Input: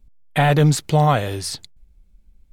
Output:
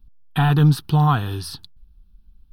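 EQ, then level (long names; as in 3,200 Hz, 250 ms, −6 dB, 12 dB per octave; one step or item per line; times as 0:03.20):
dynamic equaliser 4,100 Hz, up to −5 dB, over −36 dBFS, Q 0.81
phaser with its sweep stopped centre 2,100 Hz, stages 6
+2.0 dB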